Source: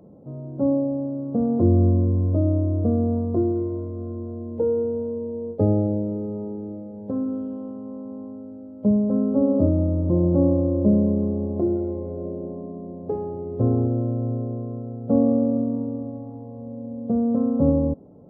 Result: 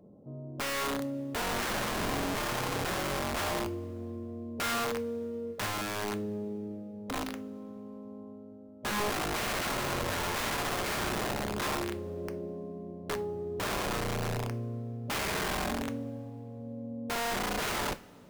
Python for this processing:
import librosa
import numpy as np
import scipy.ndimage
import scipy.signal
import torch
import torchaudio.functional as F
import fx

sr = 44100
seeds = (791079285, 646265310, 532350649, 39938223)

y = (np.mod(10.0 ** (20.0 / 20.0) * x + 1.0, 2.0) - 1.0) / 10.0 ** (20.0 / 20.0)
y = fx.rev_double_slope(y, sr, seeds[0], early_s=0.3, late_s=2.5, knee_db=-21, drr_db=9.0)
y = y * 10.0 ** (-8.0 / 20.0)